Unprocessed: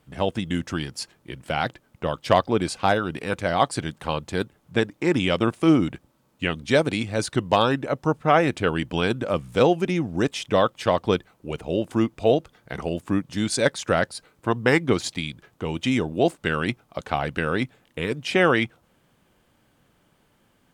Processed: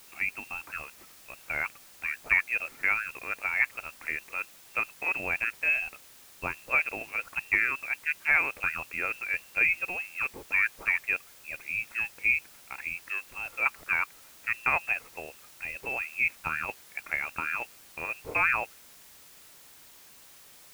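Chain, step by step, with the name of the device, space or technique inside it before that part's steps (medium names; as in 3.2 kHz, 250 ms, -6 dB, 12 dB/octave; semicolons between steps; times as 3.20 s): scrambled radio voice (band-pass 360–3100 Hz; frequency inversion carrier 2.9 kHz; white noise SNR 21 dB); trim -5.5 dB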